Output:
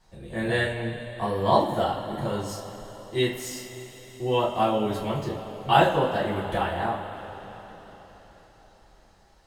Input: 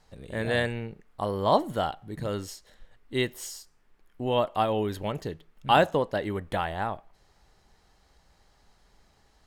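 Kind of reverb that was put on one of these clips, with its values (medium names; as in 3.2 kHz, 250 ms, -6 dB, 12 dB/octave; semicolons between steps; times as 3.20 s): two-slope reverb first 0.31 s, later 4.7 s, from -18 dB, DRR -6.5 dB; trim -5 dB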